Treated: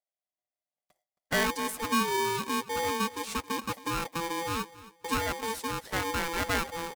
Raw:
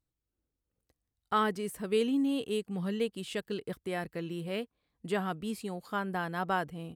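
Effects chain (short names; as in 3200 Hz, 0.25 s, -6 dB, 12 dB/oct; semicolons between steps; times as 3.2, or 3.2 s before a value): bin magnitudes rounded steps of 15 dB; gate with hold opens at -56 dBFS; in parallel at +1 dB: limiter -29 dBFS, peak gain reduction 12 dB; on the sum: fifteen-band EQ 250 Hz -5 dB, 2500 Hz -11 dB, 6300 Hz +4 dB; on a send: feedback echo 0.27 s, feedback 24%, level -18 dB; on the sum: polarity switched at an audio rate 670 Hz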